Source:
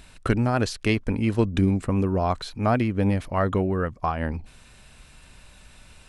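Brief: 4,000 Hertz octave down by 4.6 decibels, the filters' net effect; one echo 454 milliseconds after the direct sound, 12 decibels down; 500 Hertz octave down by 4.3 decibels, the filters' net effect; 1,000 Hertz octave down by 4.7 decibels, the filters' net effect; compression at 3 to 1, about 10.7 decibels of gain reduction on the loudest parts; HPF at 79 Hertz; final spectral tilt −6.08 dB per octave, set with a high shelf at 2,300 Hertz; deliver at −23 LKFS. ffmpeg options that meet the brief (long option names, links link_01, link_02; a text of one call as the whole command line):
ffmpeg -i in.wav -af "highpass=79,equalizer=frequency=500:width_type=o:gain=-4.5,equalizer=frequency=1000:width_type=o:gain=-5,highshelf=frequency=2300:gain=3.5,equalizer=frequency=4000:width_type=o:gain=-9,acompressor=threshold=-33dB:ratio=3,aecho=1:1:454:0.251,volume=12dB" out.wav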